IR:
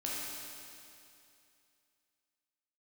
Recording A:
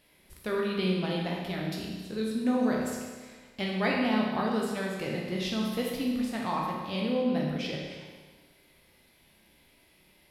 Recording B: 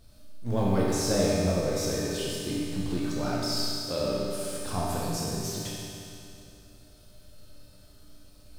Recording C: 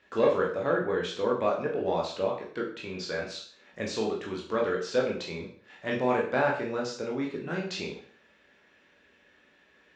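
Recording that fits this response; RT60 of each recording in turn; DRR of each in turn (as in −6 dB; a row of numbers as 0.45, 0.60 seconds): B; 1.5, 2.6, 0.50 seconds; −2.5, −6.0, −2.0 decibels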